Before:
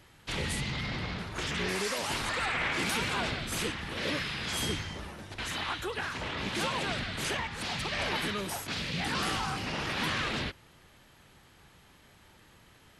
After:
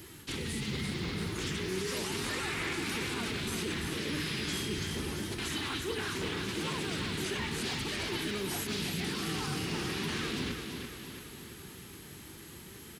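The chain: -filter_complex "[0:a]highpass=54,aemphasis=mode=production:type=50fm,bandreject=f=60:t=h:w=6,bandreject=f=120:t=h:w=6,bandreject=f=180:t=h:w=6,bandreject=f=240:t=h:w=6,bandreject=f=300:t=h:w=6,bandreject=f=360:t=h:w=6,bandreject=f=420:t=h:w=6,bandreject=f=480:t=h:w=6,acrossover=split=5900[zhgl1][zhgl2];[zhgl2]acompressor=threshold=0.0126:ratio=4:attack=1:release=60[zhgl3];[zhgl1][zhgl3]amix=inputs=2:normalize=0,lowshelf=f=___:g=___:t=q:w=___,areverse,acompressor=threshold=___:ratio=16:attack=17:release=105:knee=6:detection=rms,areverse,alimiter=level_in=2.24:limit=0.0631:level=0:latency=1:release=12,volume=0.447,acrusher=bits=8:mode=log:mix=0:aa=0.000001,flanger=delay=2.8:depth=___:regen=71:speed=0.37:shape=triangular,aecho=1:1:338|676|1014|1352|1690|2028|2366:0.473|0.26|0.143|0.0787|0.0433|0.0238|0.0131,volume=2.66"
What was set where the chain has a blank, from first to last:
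480, 6, 3, 0.0141, 4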